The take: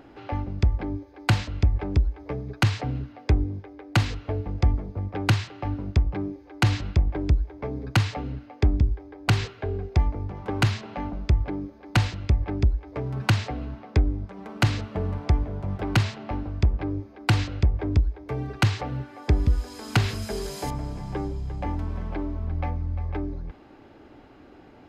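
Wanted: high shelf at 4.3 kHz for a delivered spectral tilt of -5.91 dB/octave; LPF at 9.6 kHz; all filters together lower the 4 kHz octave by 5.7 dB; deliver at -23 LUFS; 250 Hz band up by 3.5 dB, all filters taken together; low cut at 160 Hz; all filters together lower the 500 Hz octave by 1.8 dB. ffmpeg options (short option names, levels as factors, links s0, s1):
-af "highpass=160,lowpass=9600,equalizer=f=250:t=o:g=7.5,equalizer=f=500:t=o:g=-5.5,equalizer=f=4000:t=o:g=-5.5,highshelf=f=4300:g=-4,volume=2.37"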